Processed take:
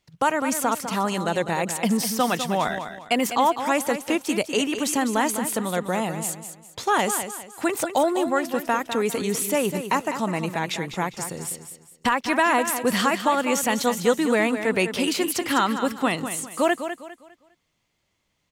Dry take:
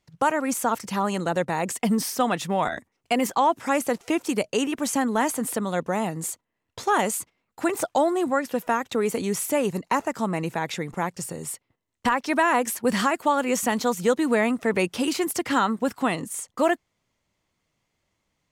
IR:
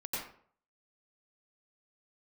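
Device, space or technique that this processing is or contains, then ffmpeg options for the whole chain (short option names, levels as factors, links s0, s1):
presence and air boost: -af "equalizer=f=3300:t=o:w=1.3:g=4.5,highshelf=f=11000:g=4.5,aecho=1:1:202|404|606|808:0.335|0.107|0.0343|0.011"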